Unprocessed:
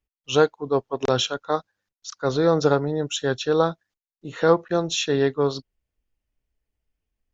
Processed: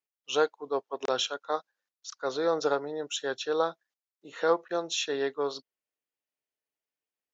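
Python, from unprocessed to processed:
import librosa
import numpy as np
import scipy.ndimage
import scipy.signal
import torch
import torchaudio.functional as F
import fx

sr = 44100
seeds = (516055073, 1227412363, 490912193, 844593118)

y = scipy.signal.sosfilt(scipy.signal.butter(2, 420.0, 'highpass', fs=sr, output='sos'), x)
y = F.gain(torch.from_numpy(y), -5.5).numpy()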